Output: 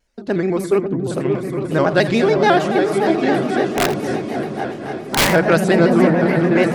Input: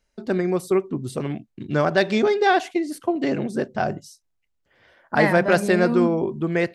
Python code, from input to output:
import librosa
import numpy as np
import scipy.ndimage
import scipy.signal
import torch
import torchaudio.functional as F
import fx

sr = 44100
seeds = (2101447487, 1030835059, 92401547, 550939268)

y = fx.reverse_delay_fb(x, sr, ms=527, feedback_pct=64, wet_db=-10.0)
y = fx.echo_opening(y, sr, ms=271, hz=200, octaves=2, feedback_pct=70, wet_db=-3)
y = fx.overflow_wrap(y, sr, gain_db=11.5, at=(3.69, 5.3))
y = y + 10.0 ** (-14.5 / 20.0) * np.pad(y, (int(84 * sr / 1000.0), 0))[:len(y)]
y = fx.vibrato_shape(y, sr, shape='square', rate_hz=7.0, depth_cents=100.0)
y = y * 10.0 ** (3.0 / 20.0)